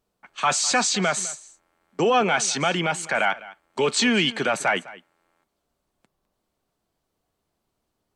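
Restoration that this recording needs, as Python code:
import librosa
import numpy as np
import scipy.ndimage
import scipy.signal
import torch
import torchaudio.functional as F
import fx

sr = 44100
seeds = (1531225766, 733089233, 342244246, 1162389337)

y = fx.fix_echo_inverse(x, sr, delay_ms=205, level_db=-19.0)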